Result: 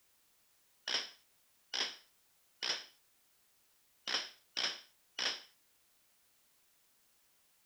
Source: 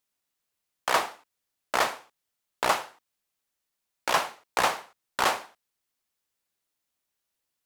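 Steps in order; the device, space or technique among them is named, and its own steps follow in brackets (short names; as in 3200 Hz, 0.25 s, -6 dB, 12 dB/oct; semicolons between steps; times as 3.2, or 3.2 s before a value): split-band scrambled radio (four-band scrambler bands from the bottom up 4321; BPF 310–3300 Hz; white noise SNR 26 dB); gain -6 dB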